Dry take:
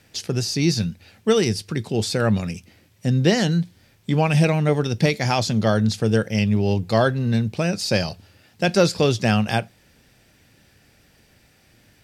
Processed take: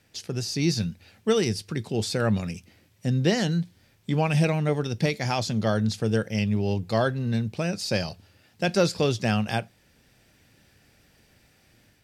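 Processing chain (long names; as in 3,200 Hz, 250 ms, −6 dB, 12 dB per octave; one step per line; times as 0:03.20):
automatic gain control gain up to 4 dB
level −7.5 dB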